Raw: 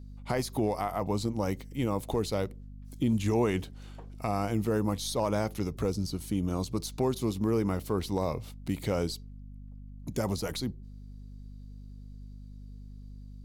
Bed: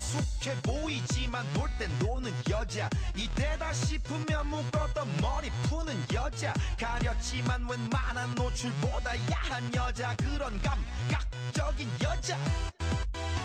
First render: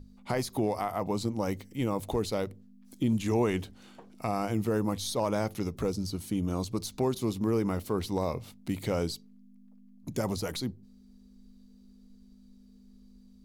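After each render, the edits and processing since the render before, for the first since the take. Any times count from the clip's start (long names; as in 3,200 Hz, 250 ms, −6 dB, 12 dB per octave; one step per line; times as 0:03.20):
mains-hum notches 50/100/150 Hz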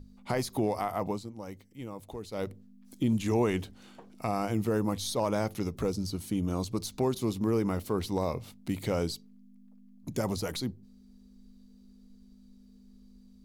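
0:01.08–0:02.45: duck −11 dB, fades 0.14 s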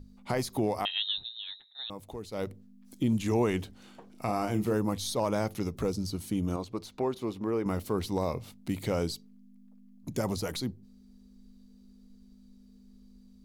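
0:00.85–0:01.90: voice inversion scrambler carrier 3,900 Hz
0:04.11–0:04.74: double-tracking delay 33 ms −8.5 dB
0:06.56–0:07.66: bass and treble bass −9 dB, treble −13 dB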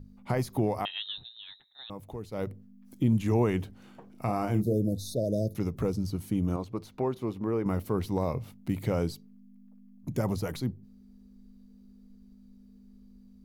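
0:04.62–0:05.56: time-frequency box erased 710–3,500 Hz
graphic EQ with 10 bands 125 Hz +6 dB, 4,000 Hz −6 dB, 8,000 Hz −6 dB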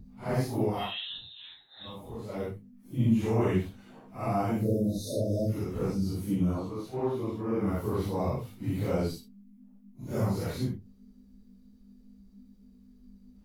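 random phases in long frames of 200 ms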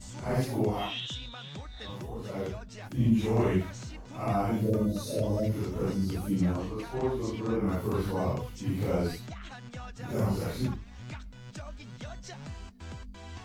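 mix in bed −11.5 dB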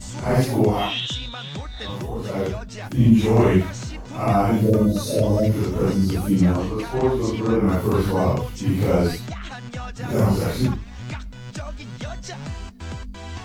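level +10 dB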